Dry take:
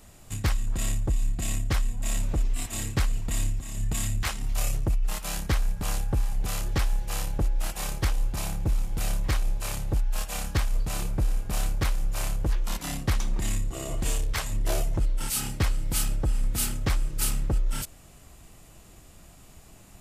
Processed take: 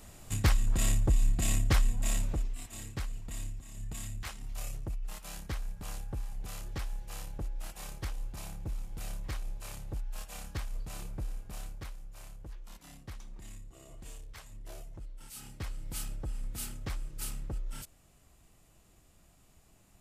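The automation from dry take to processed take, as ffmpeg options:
ffmpeg -i in.wav -af "volume=8dB,afade=type=out:start_time=1.9:duration=0.67:silence=0.251189,afade=type=out:start_time=11.2:duration=0.84:silence=0.398107,afade=type=in:start_time=15.28:duration=0.61:silence=0.398107" out.wav

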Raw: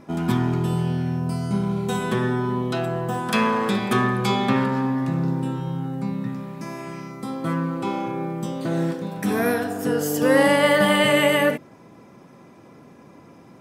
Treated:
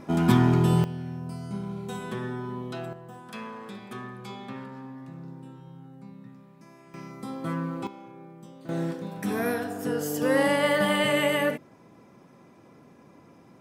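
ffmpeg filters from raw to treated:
ffmpeg -i in.wav -af "asetnsamples=nb_out_samples=441:pad=0,asendcmd='0.84 volume volume -10.5dB;2.93 volume volume -18.5dB;6.94 volume volume -6dB;7.87 volume volume -18.5dB;8.69 volume volume -6dB',volume=2dB" out.wav

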